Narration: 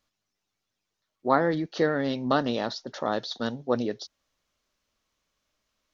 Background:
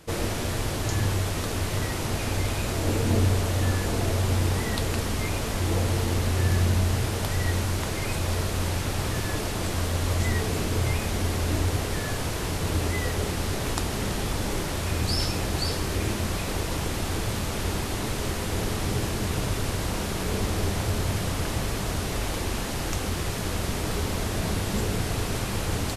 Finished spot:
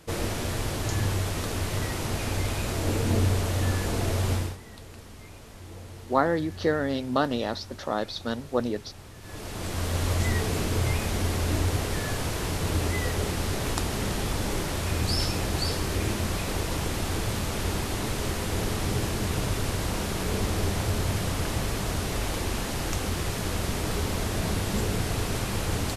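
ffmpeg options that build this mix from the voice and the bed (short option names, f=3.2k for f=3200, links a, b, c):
-filter_complex "[0:a]adelay=4850,volume=-0.5dB[a];[1:a]volume=16dB,afade=t=out:st=4.32:d=0.25:silence=0.149624,afade=t=in:st=9.2:d=0.79:silence=0.133352[b];[a][b]amix=inputs=2:normalize=0"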